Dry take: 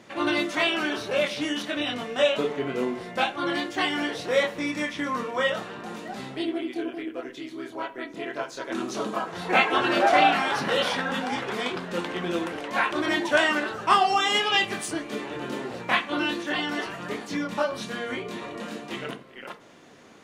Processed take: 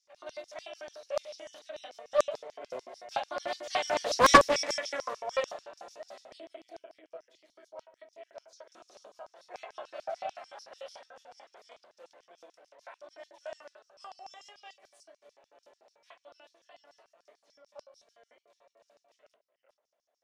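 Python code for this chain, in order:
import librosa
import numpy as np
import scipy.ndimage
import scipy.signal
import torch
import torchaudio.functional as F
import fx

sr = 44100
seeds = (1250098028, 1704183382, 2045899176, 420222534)

y = fx.doppler_pass(x, sr, speed_mps=7, closest_m=1.5, pass_at_s=4.38)
y = fx.filter_lfo_highpass(y, sr, shape='square', hz=6.8, low_hz=610.0, high_hz=5400.0, q=7.4)
y = fx.doppler_dist(y, sr, depth_ms=0.74)
y = F.gain(torch.from_numpy(y), 2.5).numpy()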